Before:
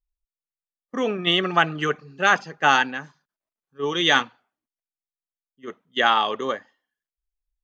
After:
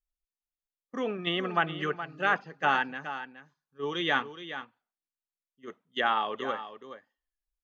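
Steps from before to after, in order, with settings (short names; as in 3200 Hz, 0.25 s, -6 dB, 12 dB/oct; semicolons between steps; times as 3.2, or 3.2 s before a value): treble ducked by the level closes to 2600 Hz, closed at -18 dBFS; echo 0.42 s -11.5 dB; gain -7.5 dB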